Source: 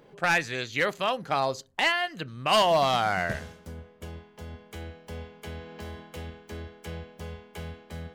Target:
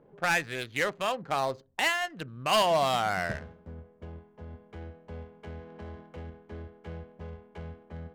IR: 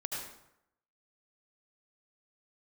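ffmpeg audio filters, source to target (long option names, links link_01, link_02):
-af "adynamicsmooth=sensitivity=6.5:basefreq=990,volume=-2.5dB"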